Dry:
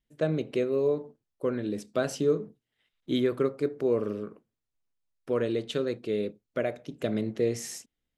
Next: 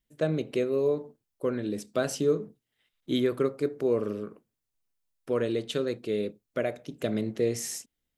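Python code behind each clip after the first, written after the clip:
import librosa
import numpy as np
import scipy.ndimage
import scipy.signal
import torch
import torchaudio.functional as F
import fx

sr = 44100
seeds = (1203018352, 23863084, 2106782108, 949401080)

y = fx.high_shelf(x, sr, hz=7000.0, db=7.5)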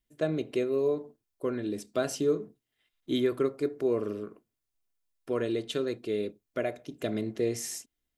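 y = x + 0.3 * np.pad(x, (int(2.9 * sr / 1000.0), 0))[:len(x)]
y = y * librosa.db_to_amplitude(-2.0)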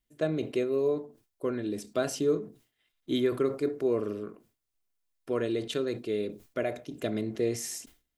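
y = fx.sustainer(x, sr, db_per_s=150.0)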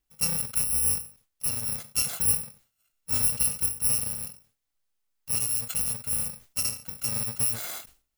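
y = fx.bit_reversed(x, sr, seeds[0], block=128)
y = y * librosa.db_to_amplitude(2.0)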